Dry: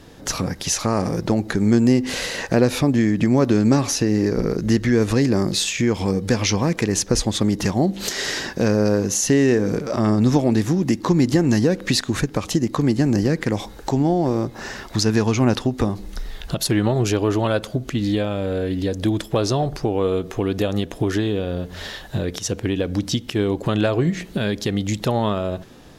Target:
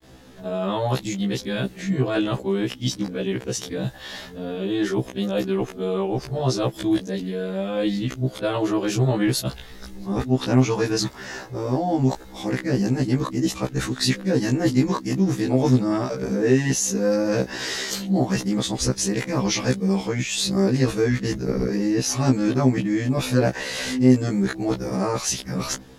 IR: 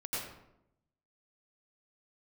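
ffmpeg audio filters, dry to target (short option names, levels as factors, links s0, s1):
-af "areverse,afftfilt=real='re*1.73*eq(mod(b,3),0)':imag='im*1.73*eq(mod(b,3),0)':win_size=2048:overlap=0.75"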